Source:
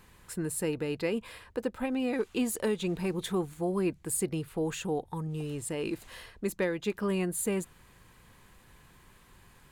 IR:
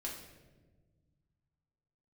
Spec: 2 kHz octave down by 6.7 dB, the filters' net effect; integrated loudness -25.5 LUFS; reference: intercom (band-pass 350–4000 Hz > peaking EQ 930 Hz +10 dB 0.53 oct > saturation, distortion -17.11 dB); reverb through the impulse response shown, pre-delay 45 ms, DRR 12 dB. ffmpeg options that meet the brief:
-filter_complex "[0:a]equalizer=f=2000:t=o:g=-9,asplit=2[s0][s1];[1:a]atrim=start_sample=2205,adelay=45[s2];[s1][s2]afir=irnorm=-1:irlink=0,volume=0.266[s3];[s0][s3]amix=inputs=2:normalize=0,highpass=350,lowpass=4000,equalizer=f=930:t=o:w=0.53:g=10,asoftclip=threshold=0.0501,volume=3.76"

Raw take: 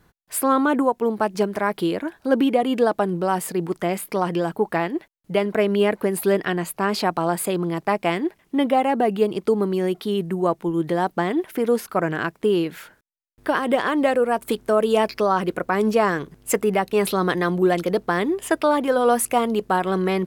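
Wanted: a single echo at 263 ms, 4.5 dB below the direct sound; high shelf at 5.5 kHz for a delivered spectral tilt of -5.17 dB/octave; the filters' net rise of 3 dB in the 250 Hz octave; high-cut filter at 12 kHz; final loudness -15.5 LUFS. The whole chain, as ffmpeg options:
-af "lowpass=12000,equalizer=f=250:t=o:g=4,highshelf=f=5500:g=5.5,aecho=1:1:263:0.596,volume=1.5"

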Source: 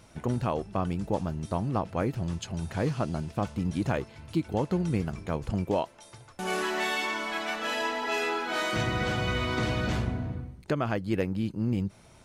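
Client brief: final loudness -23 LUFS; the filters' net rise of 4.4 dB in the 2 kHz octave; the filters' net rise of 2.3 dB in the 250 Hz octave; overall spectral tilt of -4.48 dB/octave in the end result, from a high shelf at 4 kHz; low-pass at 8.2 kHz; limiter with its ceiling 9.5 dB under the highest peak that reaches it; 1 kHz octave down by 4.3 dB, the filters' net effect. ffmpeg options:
-af "lowpass=8200,equalizer=f=250:t=o:g=3.5,equalizer=f=1000:t=o:g=-8.5,equalizer=f=2000:t=o:g=7.5,highshelf=f=4000:g=3.5,volume=2.99,alimiter=limit=0.211:level=0:latency=1"

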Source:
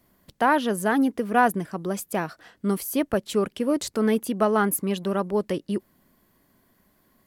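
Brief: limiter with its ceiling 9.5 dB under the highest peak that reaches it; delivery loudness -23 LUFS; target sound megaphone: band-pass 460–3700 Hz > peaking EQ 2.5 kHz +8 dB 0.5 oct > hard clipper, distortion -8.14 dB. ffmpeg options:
-af "alimiter=limit=0.158:level=0:latency=1,highpass=460,lowpass=3700,equalizer=f=2500:t=o:w=0.5:g=8,asoftclip=type=hard:threshold=0.0447,volume=3.55"

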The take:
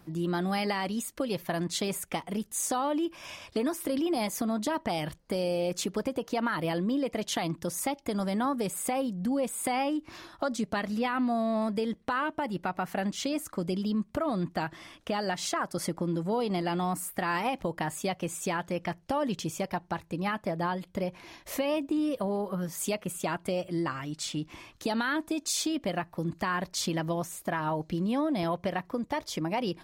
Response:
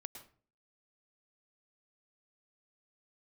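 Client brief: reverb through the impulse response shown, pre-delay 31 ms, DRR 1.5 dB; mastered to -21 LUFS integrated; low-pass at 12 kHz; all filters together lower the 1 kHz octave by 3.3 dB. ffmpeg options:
-filter_complex "[0:a]lowpass=12000,equalizer=f=1000:t=o:g=-4.5,asplit=2[s0][s1];[1:a]atrim=start_sample=2205,adelay=31[s2];[s1][s2]afir=irnorm=-1:irlink=0,volume=1.41[s3];[s0][s3]amix=inputs=2:normalize=0,volume=2.82"

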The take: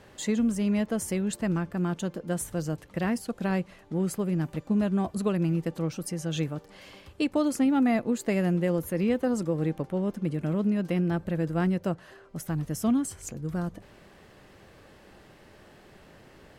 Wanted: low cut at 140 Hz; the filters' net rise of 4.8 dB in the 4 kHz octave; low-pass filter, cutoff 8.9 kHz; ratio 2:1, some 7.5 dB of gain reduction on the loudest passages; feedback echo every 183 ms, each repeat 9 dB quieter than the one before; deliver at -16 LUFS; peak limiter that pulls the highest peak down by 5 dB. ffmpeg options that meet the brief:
-af "highpass=140,lowpass=8900,equalizer=f=4000:t=o:g=6.5,acompressor=threshold=0.0178:ratio=2,alimiter=level_in=1.26:limit=0.0631:level=0:latency=1,volume=0.794,aecho=1:1:183|366|549|732:0.355|0.124|0.0435|0.0152,volume=10"

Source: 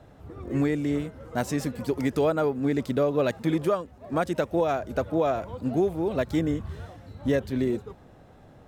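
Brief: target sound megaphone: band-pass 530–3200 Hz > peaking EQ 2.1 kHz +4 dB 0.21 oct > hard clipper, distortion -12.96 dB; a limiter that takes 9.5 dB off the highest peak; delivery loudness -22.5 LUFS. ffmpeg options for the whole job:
-af "alimiter=limit=0.075:level=0:latency=1,highpass=530,lowpass=3200,equalizer=f=2100:t=o:w=0.21:g=4,asoftclip=type=hard:threshold=0.0251,volume=7.08"

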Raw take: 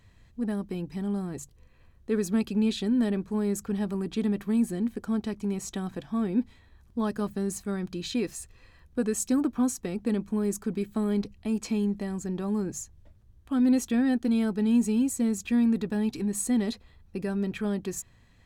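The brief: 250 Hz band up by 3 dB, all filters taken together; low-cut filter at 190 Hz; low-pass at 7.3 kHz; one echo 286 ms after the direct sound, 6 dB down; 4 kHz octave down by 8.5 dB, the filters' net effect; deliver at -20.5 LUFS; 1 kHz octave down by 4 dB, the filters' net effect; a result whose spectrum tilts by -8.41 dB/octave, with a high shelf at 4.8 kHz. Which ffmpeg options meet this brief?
-af "highpass=190,lowpass=7300,equalizer=f=250:t=o:g=5.5,equalizer=f=1000:t=o:g=-5,equalizer=f=4000:t=o:g=-7,highshelf=f=4800:g=-6,aecho=1:1:286:0.501,volume=1.78"

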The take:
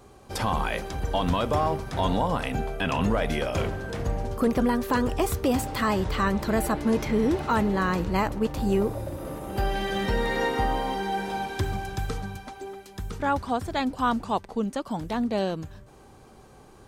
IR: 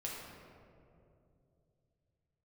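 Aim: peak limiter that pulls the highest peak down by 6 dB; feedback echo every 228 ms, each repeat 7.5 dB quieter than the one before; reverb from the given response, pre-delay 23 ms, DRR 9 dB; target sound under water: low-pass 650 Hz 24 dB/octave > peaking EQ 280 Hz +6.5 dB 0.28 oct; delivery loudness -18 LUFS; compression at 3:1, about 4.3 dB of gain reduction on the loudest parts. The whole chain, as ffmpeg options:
-filter_complex "[0:a]acompressor=threshold=0.0562:ratio=3,alimiter=limit=0.0841:level=0:latency=1,aecho=1:1:228|456|684|912|1140:0.422|0.177|0.0744|0.0312|0.0131,asplit=2[s0][s1];[1:a]atrim=start_sample=2205,adelay=23[s2];[s1][s2]afir=irnorm=-1:irlink=0,volume=0.335[s3];[s0][s3]amix=inputs=2:normalize=0,lowpass=f=650:w=0.5412,lowpass=f=650:w=1.3066,equalizer=f=280:t=o:w=0.28:g=6.5,volume=4.22"

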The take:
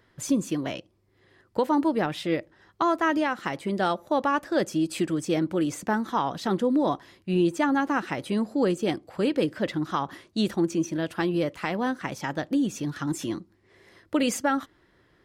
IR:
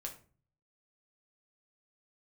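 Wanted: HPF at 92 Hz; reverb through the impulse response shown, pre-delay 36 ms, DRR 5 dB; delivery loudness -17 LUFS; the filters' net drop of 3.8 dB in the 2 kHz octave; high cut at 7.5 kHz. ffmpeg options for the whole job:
-filter_complex "[0:a]highpass=92,lowpass=7500,equalizer=f=2000:t=o:g=-5,asplit=2[s0][s1];[1:a]atrim=start_sample=2205,adelay=36[s2];[s1][s2]afir=irnorm=-1:irlink=0,volume=0.75[s3];[s0][s3]amix=inputs=2:normalize=0,volume=2.82"

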